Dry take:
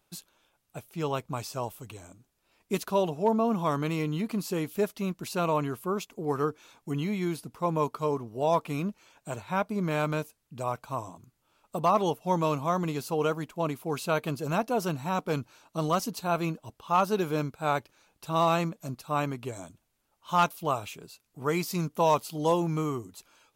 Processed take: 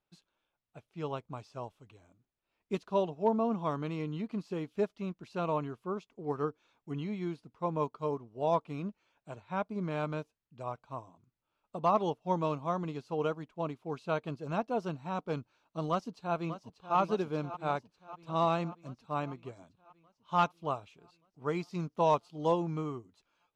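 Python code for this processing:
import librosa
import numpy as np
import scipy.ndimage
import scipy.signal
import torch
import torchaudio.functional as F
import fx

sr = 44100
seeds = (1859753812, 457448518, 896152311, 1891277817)

y = fx.echo_throw(x, sr, start_s=15.9, length_s=1.07, ms=590, feedback_pct=70, wet_db=-9.0)
y = scipy.signal.sosfilt(scipy.signal.butter(2, 4000.0, 'lowpass', fs=sr, output='sos'), y)
y = fx.dynamic_eq(y, sr, hz=2000.0, q=1.2, threshold_db=-45.0, ratio=4.0, max_db=-4)
y = fx.upward_expand(y, sr, threshold_db=-44.0, expansion=1.5)
y = y * 10.0 ** (-2.0 / 20.0)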